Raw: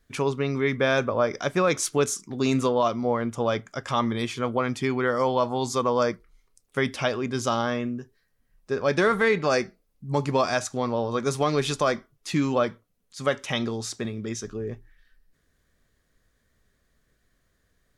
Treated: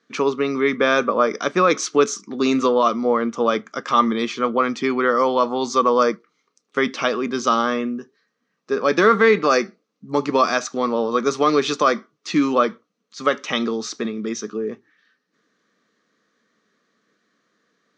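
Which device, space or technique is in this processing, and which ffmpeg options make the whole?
television speaker: -af "lowpass=5600,highpass=frequency=180:width=0.5412,highpass=frequency=180:width=1.3066,equalizer=frequency=210:width_type=q:width=4:gain=8,equalizer=frequency=310:width_type=q:width=4:gain=7,equalizer=frequency=460:width_type=q:width=4:gain=7,equalizer=frequency=1200:width_type=q:width=4:gain=10,equalizer=frequency=4200:width_type=q:width=4:gain=4,equalizer=frequency=6000:width_type=q:width=4:gain=8,lowpass=frequency=8500:width=0.5412,lowpass=frequency=8500:width=1.3066,equalizer=frequency=2400:width_type=o:width=1.9:gain=4.5"

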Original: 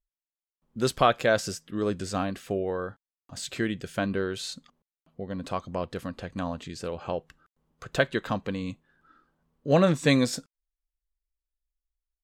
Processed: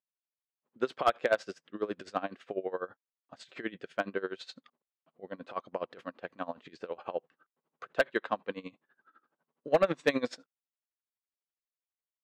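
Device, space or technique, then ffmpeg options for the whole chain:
helicopter radio: -af "highpass=370,lowpass=2800,aeval=exprs='val(0)*pow(10,-21*(0.5-0.5*cos(2*PI*12*n/s))/20)':channel_layout=same,asoftclip=type=hard:threshold=-17.5dB,volume=2dB"

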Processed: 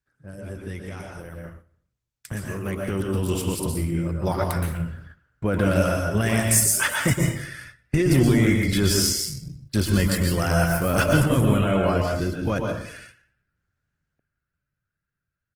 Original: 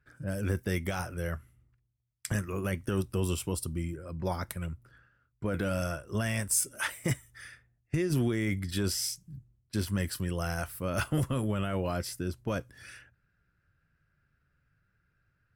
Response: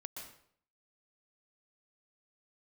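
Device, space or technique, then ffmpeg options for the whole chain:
speakerphone in a meeting room: -filter_complex "[0:a]asettb=1/sr,asplit=3[link_01][link_02][link_03];[link_01]atrim=end=11.614[link_04];[link_02]atrim=start=11.61:end=12.55,asetpts=PTS-STARTPTS,afade=type=in:duration=0.004:curve=qsin,afade=type=out:start_time=0.936:duration=0.004:curve=qsin,acrossover=split=3400[link_05][link_06];[link_06]acompressor=threshold=-53dB:ratio=4:attack=1:release=60[link_07];[link_05][link_07]amix=inputs=2:normalize=0[link_08];[link_03]atrim=start=12.546[link_09];[link_04][link_08]acrossfade=duration=0.004:curve1=hsin:curve2=qsin[link_10];[link_10][link_09]acrossfade=duration=0.004:curve1=qsin:curve2=hsin[link_11];[1:a]atrim=start_sample=2205[link_12];[link_11][link_12]afir=irnorm=-1:irlink=0,asplit=2[link_13][link_14];[link_14]adelay=290,highpass=300,lowpass=3400,asoftclip=type=hard:threshold=-27dB,volume=-30dB[link_15];[link_13][link_15]amix=inputs=2:normalize=0,dynaudnorm=framelen=370:gausssize=17:maxgain=15dB,agate=range=-9dB:threshold=-44dB:ratio=16:detection=peak" -ar 48000 -c:a libopus -b:a 16k

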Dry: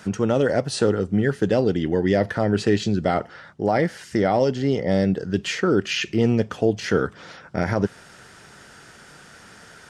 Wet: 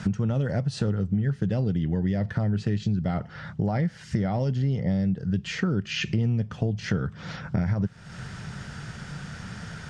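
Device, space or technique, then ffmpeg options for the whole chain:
jukebox: -af "lowpass=6800,lowshelf=frequency=230:width_type=q:width=1.5:gain=12,acompressor=threshold=-28dB:ratio=5,volume=3.5dB"

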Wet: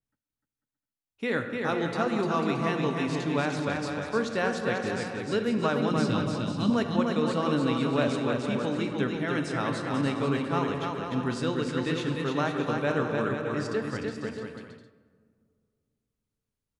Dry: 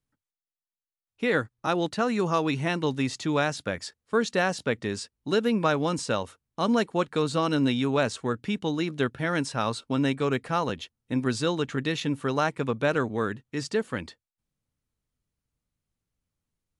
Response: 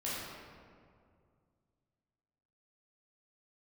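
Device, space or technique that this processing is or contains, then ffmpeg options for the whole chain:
keyed gated reverb: -filter_complex "[0:a]asplit=3[link_01][link_02][link_03];[1:a]atrim=start_sample=2205[link_04];[link_02][link_04]afir=irnorm=-1:irlink=0[link_05];[link_03]apad=whole_len=740817[link_06];[link_05][link_06]sidechaingate=range=-8dB:threshold=-45dB:ratio=16:detection=peak,volume=-8.5dB[link_07];[link_01][link_07]amix=inputs=2:normalize=0,asettb=1/sr,asplit=3[link_08][link_09][link_10];[link_08]atrim=end=5.914[link_11];[link_09]atrim=start=5.91:end=6.7,asetpts=PTS-STARTPTS,afade=type=in:duration=0.004:curve=qsin,afade=type=out:start_time=0.786:duration=0.004:curve=qsin,equalizer=frequency=125:width_type=o:width=1:gain=9,equalizer=frequency=250:width_type=o:width=1:gain=9,equalizer=frequency=500:width_type=o:width=1:gain=-10,equalizer=frequency=1000:width_type=o:width=1:gain=-5,equalizer=frequency=2000:width_type=o:width=1:gain=-4,equalizer=frequency=4000:width_type=o:width=1:gain=7,equalizer=frequency=8000:width_type=o:width=1:gain=-4[link_12];[link_10]atrim=start=6.696[link_13];[link_11][link_12]acrossfade=duration=0.004:curve1=hsin:curve2=qsin[link_14];[link_14][link_13]acrossfade=duration=0.004:curve1=qsin:curve2=hsin,aecho=1:1:300|495|621.8|704.1|757.7:0.631|0.398|0.251|0.158|0.1,adynamicequalizer=threshold=0.00794:dfrequency=3700:dqfactor=0.7:tfrequency=3700:tqfactor=0.7:attack=5:release=100:ratio=0.375:range=2:mode=cutabove:tftype=highshelf,volume=-6dB"

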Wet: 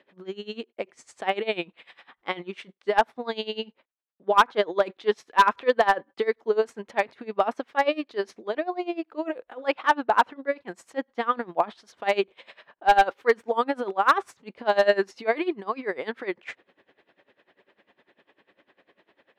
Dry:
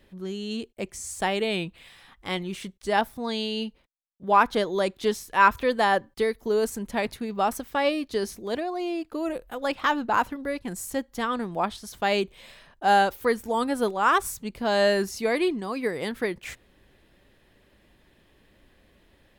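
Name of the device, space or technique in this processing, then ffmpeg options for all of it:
helicopter radio: -af "highpass=380,lowpass=2600,aeval=exprs='val(0)*pow(10,-21*(0.5-0.5*cos(2*PI*10*n/s))/20)':channel_layout=same,asoftclip=type=hard:threshold=-17.5dB,volume=8dB"

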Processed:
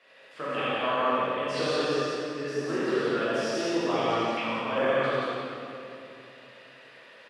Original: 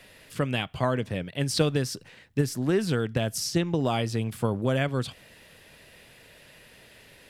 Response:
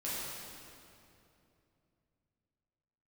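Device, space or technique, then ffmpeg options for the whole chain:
station announcement: -filter_complex "[0:a]highpass=430,lowpass=3800,equalizer=frequency=1200:width_type=o:width=0.34:gain=7.5,aecho=1:1:87.46|180.8:0.708|0.794[link_01];[1:a]atrim=start_sample=2205[link_02];[link_01][link_02]afir=irnorm=-1:irlink=0,asettb=1/sr,asplit=3[link_03][link_04][link_05];[link_03]atrim=end=4.374[link_06];[link_04]atrim=start=4.37:end=4.78,asetpts=PTS-STARTPTS,afade=type=in:duration=0.004:curve=qsin,afade=type=out:start_time=0.406:duration=0.004:curve=qsin,equalizer=frequency=400:width_type=o:width=0.67:gain=-10,equalizer=frequency=2500:width_type=o:width=0.67:gain=11,equalizer=frequency=10000:width_type=o:width=0.67:gain=-6[link_07];[link_05]atrim=start=4.776[link_08];[link_06][link_07]acrossfade=duration=0.004:curve1=hsin:curve2=qsin[link_09];[link_09][link_08]acrossfade=duration=0.004:curve1=qsin:curve2=hsin,volume=-4dB"

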